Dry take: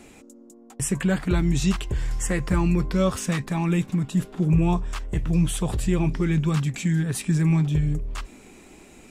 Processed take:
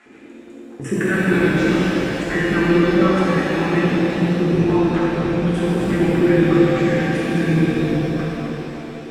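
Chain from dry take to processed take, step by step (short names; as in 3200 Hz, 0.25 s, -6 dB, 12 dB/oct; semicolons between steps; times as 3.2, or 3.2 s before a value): LFO band-pass square 8.3 Hz 330–1600 Hz; shimmer reverb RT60 3.4 s, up +7 st, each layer -8 dB, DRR -8.5 dB; gain +7 dB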